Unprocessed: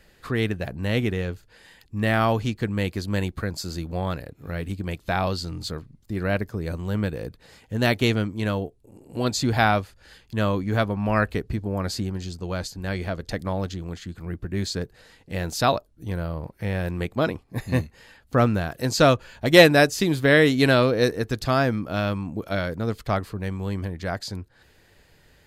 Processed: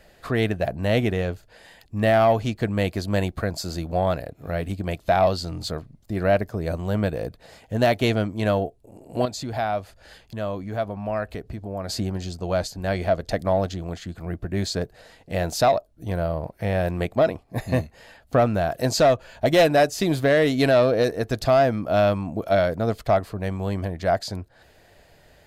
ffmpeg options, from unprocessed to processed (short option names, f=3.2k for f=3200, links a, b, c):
-filter_complex "[0:a]asettb=1/sr,asplit=3[a][b][c];[a]atrim=end=9.254[d];[b]atrim=start=9.25:end=11.89,asetpts=PTS-STARTPTS,afade=t=in:d=0.004:c=qsin,afade=t=out:st=2.636:d=0.004:c=qsin,acompressor=threshold=-37dB:ratio=2:attack=3.2:release=140:knee=1:detection=peak[e];[c]atrim=start=11.886[f];[d][e]acrossfade=d=0.004:c1=hsin:c2=qsin[g];[g][f]acrossfade=d=0.004:c1=qsin:c2=hsin,equalizer=f=660:t=o:w=0.49:g=12,acontrast=43,alimiter=limit=-6dB:level=0:latency=1:release=354,volume=-4.5dB"